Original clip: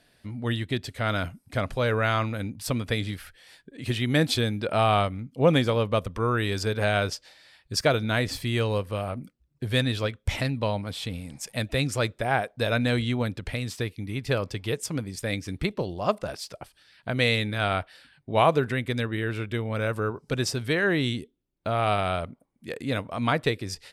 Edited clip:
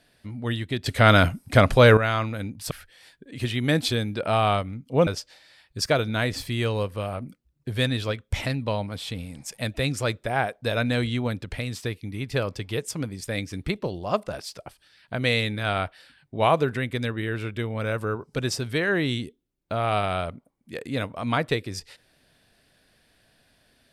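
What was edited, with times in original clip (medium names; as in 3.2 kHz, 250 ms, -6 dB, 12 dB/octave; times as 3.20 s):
0.86–1.97 s: gain +11 dB
2.71–3.17 s: delete
5.53–7.02 s: delete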